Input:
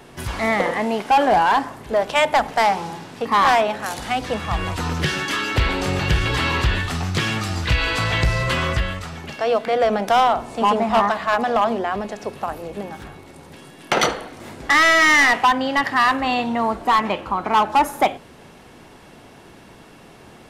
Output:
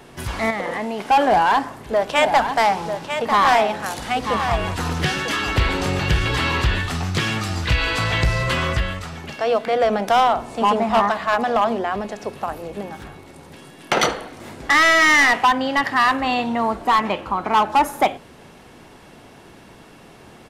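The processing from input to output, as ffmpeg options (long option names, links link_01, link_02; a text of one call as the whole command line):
ffmpeg -i in.wav -filter_complex "[0:a]asettb=1/sr,asplit=3[link_01][link_02][link_03];[link_01]atrim=end=0.504[link_04];[link_02]atrim=start=0.5:end=1.04,asetpts=PTS-STARTPTS,afade=type=in:duration=0.004:curve=qsin,afade=type=out:start_time=0.536:duration=0.004:curve=qsin,acompressor=threshold=-21dB:ratio=6:attack=3.2:release=140:knee=1:detection=peak[link_05];[link_03]atrim=start=1.036[link_06];[link_04][link_05]acrossfade=duration=0.004:curve1=hsin:curve2=qsin[link_07];[link_07][link_06]acrossfade=duration=0.004:curve1=qsin:curve2=hsin,asplit=3[link_08][link_09][link_10];[link_08]afade=type=out:start_time=2.13:duration=0.02[link_11];[link_09]aecho=1:1:946:0.398,afade=type=in:start_time=2.13:duration=0.02,afade=type=out:start_time=5.87:duration=0.02[link_12];[link_10]afade=type=in:start_time=5.87:duration=0.02[link_13];[link_11][link_12][link_13]amix=inputs=3:normalize=0" out.wav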